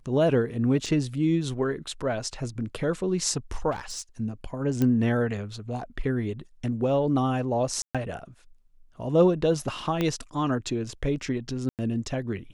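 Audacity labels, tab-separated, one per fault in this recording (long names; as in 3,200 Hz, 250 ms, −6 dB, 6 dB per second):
0.860000	0.860000	drop-out 4.3 ms
3.710000	4.020000	clipping −29.5 dBFS
4.820000	4.820000	click −13 dBFS
7.820000	7.950000	drop-out 126 ms
10.010000	10.010000	click −13 dBFS
11.690000	11.790000	drop-out 98 ms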